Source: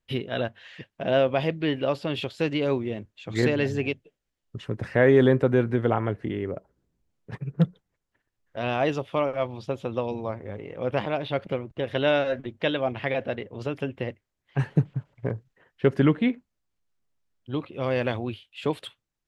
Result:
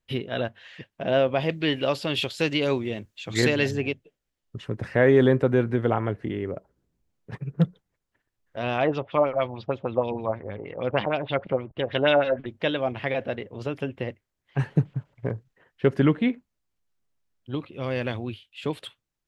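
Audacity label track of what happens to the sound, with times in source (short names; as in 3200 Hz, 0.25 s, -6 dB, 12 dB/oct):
1.490000	3.710000	high shelf 2500 Hz +11 dB
8.780000	12.460000	LFO low-pass sine 6.4 Hz 680–4200 Hz
17.550000	18.770000	bell 730 Hz -4.5 dB 2 oct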